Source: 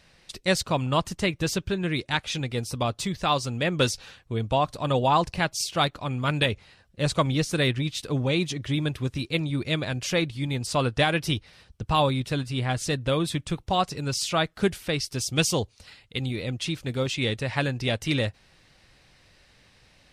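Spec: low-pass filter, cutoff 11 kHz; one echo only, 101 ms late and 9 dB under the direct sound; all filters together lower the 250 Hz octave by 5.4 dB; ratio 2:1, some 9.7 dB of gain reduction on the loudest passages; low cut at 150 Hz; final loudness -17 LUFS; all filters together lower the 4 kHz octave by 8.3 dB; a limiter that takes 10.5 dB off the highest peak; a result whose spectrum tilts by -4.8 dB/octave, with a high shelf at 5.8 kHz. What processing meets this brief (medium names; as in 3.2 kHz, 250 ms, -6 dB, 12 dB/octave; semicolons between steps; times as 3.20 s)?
high-pass 150 Hz; low-pass 11 kHz; peaking EQ 250 Hz -6.5 dB; peaking EQ 4 kHz -8 dB; treble shelf 5.8 kHz -7 dB; compression 2:1, threshold -37 dBFS; peak limiter -27.5 dBFS; delay 101 ms -9 dB; trim +21.5 dB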